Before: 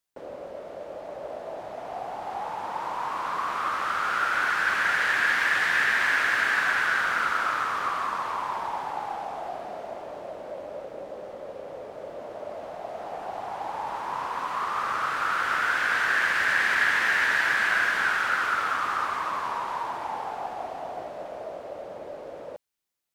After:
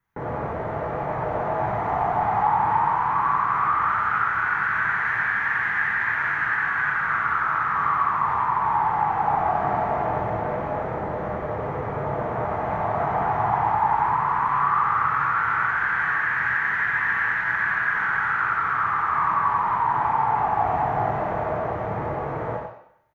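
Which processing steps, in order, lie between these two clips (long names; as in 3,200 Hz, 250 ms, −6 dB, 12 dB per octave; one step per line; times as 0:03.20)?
octave-band graphic EQ 125/250/500/1,000/2,000/4,000/8,000 Hz +6/−11/−11/+6/+7/−3/−8 dB
downward compressor 6 to 1, threshold −33 dBFS, peak gain reduction 18 dB
single-tap delay 93 ms −5 dB
convolution reverb RT60 0.70 s, pre-delay 3 ms, DRR 1 dB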